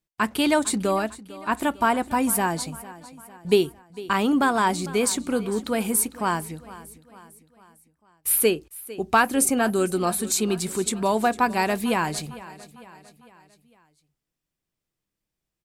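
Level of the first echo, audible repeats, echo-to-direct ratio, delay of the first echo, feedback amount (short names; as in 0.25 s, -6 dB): -18.0 dB, 3, -17.0 dB, 0.452 s, 50%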